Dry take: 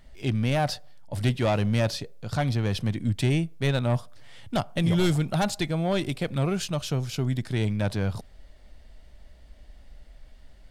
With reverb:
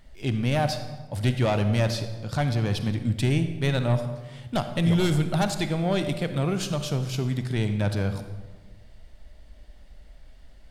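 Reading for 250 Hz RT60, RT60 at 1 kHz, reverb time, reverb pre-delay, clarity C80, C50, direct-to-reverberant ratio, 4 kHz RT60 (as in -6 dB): 1.7 s, 1.2 s, 1.3 s, 37 ms, 11.0 dB, 9.0 dB, 8.5 dB, 0.85 s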